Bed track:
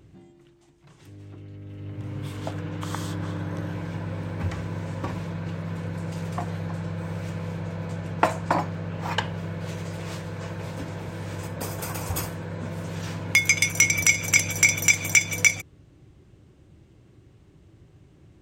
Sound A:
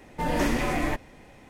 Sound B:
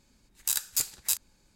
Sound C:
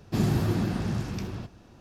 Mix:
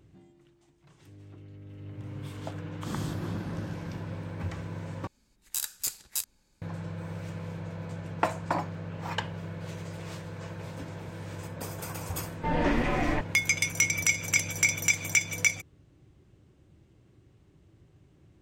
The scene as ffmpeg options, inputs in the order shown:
ffmpeg -i bed.wav -i cue0.wav -i cue1.wav -i cue2.wav -filter_complex "[0:a]volume=-6dB[link_01];[1:a]lowpass=3300[link_02];[link_01]asplit=2[link_03][link_04];[link_03]atrim=end=5.074[link_05];[2:a]atrim=end=1.55,asetpts=PTS-STARTPTS,volume=-4dB[link_06];[link_04]atrim=start=6.616[link_07];[3:a]atrim=end=1.8,asetpts=PTS-STARTPTS,volume=-11dB,afade=type=in:duration=0.004:curve=hsin,afade=type=out:start_time=1.796:duration=0.004:curve=hsin,adelay=2730[link_08];[link_02]atrim=end=1.49,asetpts=PTS-STARTPTS,volume=-1dB,afade=type=in:duration=0.004:curve=hsin,afade=type=out:start_time=1.486:duration=0.004:curve=hsin,adelay=12250[link_09];[link_05][link_06]acrossfade=duration=0.004:curve1=hsin:curve2=hsin[link_10];[link_10][link_07]acrossfade=duration=0.004:curve1=hsin:curve2=hsin[link_11];[link_11][link_08][link_09]amix=inputs=3:normalize=0" out.wav

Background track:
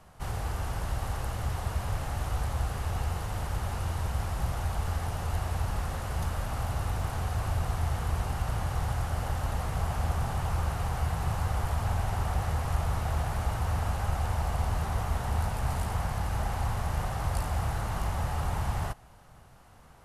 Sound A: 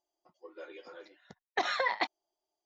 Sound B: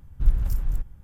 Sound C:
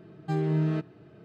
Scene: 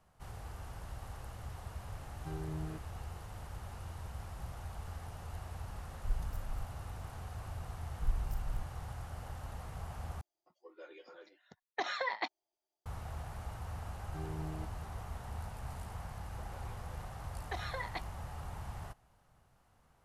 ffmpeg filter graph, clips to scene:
ffmpeg -i bed.wav -i cue0.wav -i cue1.wav -i cue2.wav -filter_complex "[3:a]asplit=2[link_01][link_02];[2:a]asplit=2[link_03][link_04];[1:a]asplit=2[link_05][link_06];[0:a]volume=-13.5dB,asplit=2[link_07][link_08];[link_07]atrim=end=10.214[link_09];[link_05]atrim=end=2.65,asetpts=PTS-STARTPTS,volume=-5.5dB[link_10];[link_08]atrim=start=12.856[link_11];[link_01]atrim=end=1.24,asetpts=PTS-STARTPTS,volume=-16dB,afade=type=in:duration=0.004:curve=hsin,afade=type=out:start_time=1.236:duration=0.004:curve=hsin,adelay=1970[link_12];[link_03]atrim=end=1.03,asetpts=PTS-STARTPTS,volume=-15.5dB,afade=type=in:duration=0.004:curve=hsin,afade=type=out:start_time=1.026:duration=0.004:curve=hsin,adelay=5830[link_13];[link_04]atrim=end=1.03,asetpts=PTS-STARTPTS,volume=-13dB,afade=type=in:duration=0.004:curve=hsin,afade=type=out:start_time=1.026:duration=0.004:curve=hsin,adelay=7810[link_14];[link_02]atrim=end=1.24,asetpts=PTS-STARTPTS,volume=-17dB,afade=type=in:duration=0.004:curve=hsin,afade=type=out:start_time=1.236:duration=0.004:curve=hsin,adelay=13850[link_15];[link_06]atrim=end=2.65,asetpts=PTS-STARTPTS,volume=-11dB,afade=type=in:duration=0.004:curve=hsin,afade=type=out:start_time=2.646:duration=0.004:curve=hsin,adelay=15940[link_16];[link_09][link_10]acrossfade=duration=0.004:curve1=hsin:curve2=hsin[link_17];[link_17][link_11]acrossfade=duration=0.004:curve1=hsin:curve2=hsin[link_18];[link_18][link_12][link_13][link_14][link_15][link_16]amix=inputs=6:normalize=0" out.wav

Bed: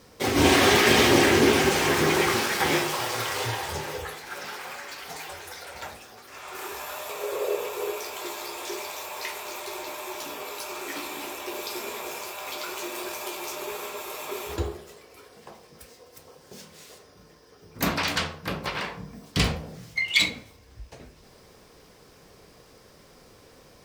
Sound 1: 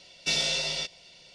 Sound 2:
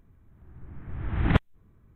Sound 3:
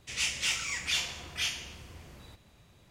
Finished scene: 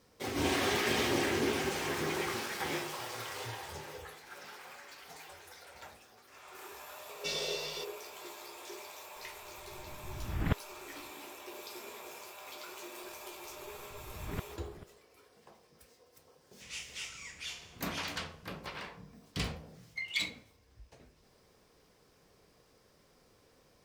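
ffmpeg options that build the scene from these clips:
ffmpeg -i bed.wav -i cue0.wav -i cue1.wav -i cue2.wav -filter_complex "[2:a]asplit=2[link_01][link_02];[0:a]volume=-12.5dB[link_03];[link_02]asplit=2[link_04][link_05];[link_05]adelay=437.3,volume=-14dB,highshelf=frequency=4000:gain=-9.84[link_06];[link_04][link_06]amix=inputs=2:normalize=0[link_07];[1:a]atrim=end=1.34,asetpts=PTS-STARTPTS,volume=-10.5dB,afade=type=in:duration=0.004:curve=hsin,afade=type=out:start_time=1.336:duration=0.004:curve=hsin,adelay=307818S[link_08];[link_01]atrim=end=1.95,asetpts=PTS-STARTPTS,volume=-9.5dB,afade=type=in:duration=0.004:curve=hsin,afade=type=out:start_time=1.946:duration=0.004:curve=hsin,adelay=9160[link_09];[link_07]atrim=end=1.95,asetpts=PTS-STARTPTS,volume=-18dB,afade=type=in:duration=0.004:curve=hsin,afade=type=out:start_time=1.946:duration=0.004:curve=hsin,adelay=13030[link_10];[3:a]atrim=end=2.9,asetpts=PTS-STARTPTS,volume=-12.5dB,afade=type=in:duration=0.004:curve=hsin,afade=type=out:start_time=2.896:duration=0.004:curve=hsin,adelay=16530[link_11];[link_03][link_08][link_09][link_10][link_11]amix=inputs=5:normalize=0" out.wav

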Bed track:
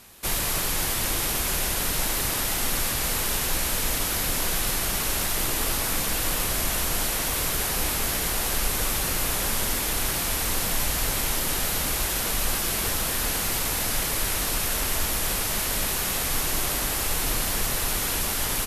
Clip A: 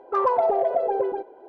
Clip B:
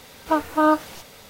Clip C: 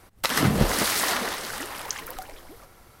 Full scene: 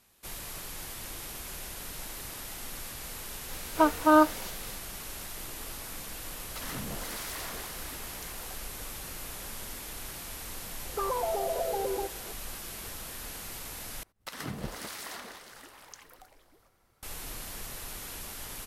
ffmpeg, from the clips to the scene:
ffmpeg -i bed.wav -i cue0.wav -i cue1.wav -i cue2.wav -filter_complex "[3:a]asplit=2[link_01][link_02];[0:a]volume=-15dB[link_03];[link_01]asoftclip=type=tanh:threshold=-21dB[link_04];[1:a]acompressor=threshold=-24dB:ratio=6:attack=3.2:release=140:knee=1:detection=peak[link_05];[link_03]asplit=2[link_06][link_07];[link_06]atrim=end=14.034[link_08];[link_02]atrim=end=3,asetpts=PTS-STARTPTS,volume=-16.5dB[link_09];[link_07]atrim=start=17.026[link_10];[2:a]atrim=end=1.29,asetpts=PTS-STARTPTS,volume=-2dB,afade=type=in:duration=0.004:curve=hsin,afade=type=out:start_time=1.286:duration=0.004:curve=hsin,adelay=153909S[link_11];[link_04]atrim=end=3,asetpts=PTS-STARTPTS,volume=-13.5dB,afade=type=in:duration=0.004:curve=hsin,afade=type=out:start_time=2.996:duration=0.004:curve=hsin,adelay=6320[link_12];[link_05]atrim=end=1.48,asetpts=PTS-STARTPTS,volume=-3.5dB,afade=type=in:duration=0.004:curve=hsin,afade=type=out:start_time=1.476:duration=0.004:curve=hsin,adelay=10850[link_13];[link_08][link_09]acrossfade=duration=0.004:curve1=hsin:curve2=hsin[link_14];[link_14][link_10]acrossfade=duration=0.004:curve1=hsin:curve2=hsin[link_15];[link_15][link_11][link_12][link_13]amix=inputs=4:normalize=0" out.wav

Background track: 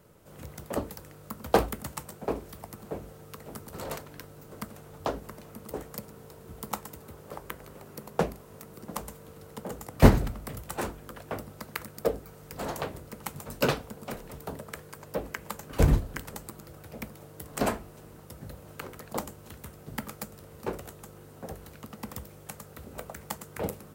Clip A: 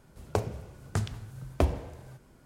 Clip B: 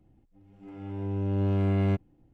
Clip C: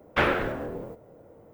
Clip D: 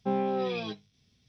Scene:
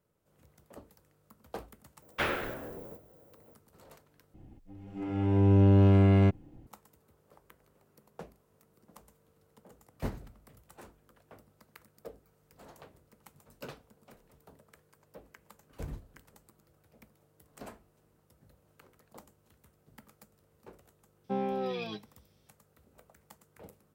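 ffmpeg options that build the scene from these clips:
ffmpeg -i bed.wav -i cue0.wav -i cue1.wav -i cue2.wav -i cue3.wav -filter_complex "[0:a]volume=-19.5dB[link_01];[3:a]aemphasis=mode=production:type=75kf[link_02];[2:a]alimiter=level_in=23dB:limit=-1dB:release=50:level=0:latency=1[link_03];[link_01]asplit=2[link_04][link_05];[link_04]atrim=end=4.344[link_06];[link_03]atrim=end=2.33,asetpts=PTS-STARTPTS,volume=-14.5dB[link_07];[link_05]atrim=start=6.666[link_08];[link_02]atrim=end=1.53,asetpts=PTS-STARTPTS,volume=-9.5dB,afade=type=in:duration=0.004:curve=hsin,afade=type=out:start_time=1.526:duration=0.004:curve=hsin,adelay=2020[link_09];[4:a]atrim=end=1.28,asetpts=PTS-STARTPTS,volume=-4dB,afade=type=in:duration=0.004:curve=hsin,afade=type=out:start_time=1.276:duration=0.004:curve=hsin,adelay=21240[link_10];[link_06][link_07]acrossfade=duration=0.004:curve1=hsin:curve2=hsin[link_11];[link_11][link_08]acrossfade=duration=0.004:curve1=hsin:curve2=hsin[link_12];[link_12][link_09][link_10]amix=inputs=3:normalize=0" out.wav

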